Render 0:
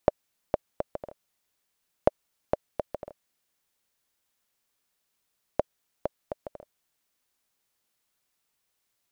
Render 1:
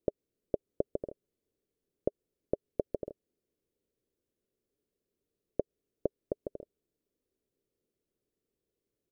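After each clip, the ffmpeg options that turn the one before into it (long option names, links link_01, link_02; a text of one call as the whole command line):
ffmpeg -i in.wav -af "alimiter=limit=-15dB:level=0:latency=1:release=117,firequalizer=gain_entry='entry(190,0);entry(410,8);entry(800,-19)':delay=0.05:min_phase=1,volume=2.5dB" out.wav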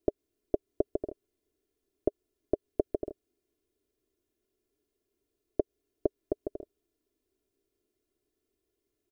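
ffmpeg -i in.wav -af "aecho=1:1:2.9:0.85,volume=1.5dB" out.wav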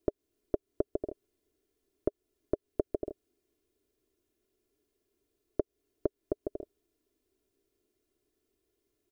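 ffmpeg -i in.wav -af "acompressor=threshold=-36dB:ratio=1.5,volume=2.5dB" out.wav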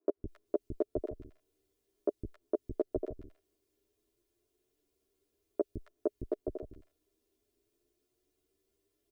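ffmpeg -i in.wav -filter_complex "[0:a]acrossover=split=240|1600[link_01][link_02][link_03];[link_01]adelay=160[link_04];[link_03]adelay=270[link_05];[link_04][link_02][link_05]amix=inputs=3:normalize=0,asplit=2[link_06][link_07];[link_07]adelay=10.3,afreqshift=0.57[link_08];[link_06][link_08]amix=inputs=2:normalize=1,volume=3.5dB" out.wav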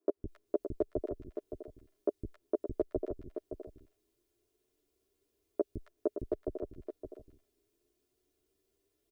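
ffmpeg -i in.wav -af "aecho=1:1:567:0.376" out.wav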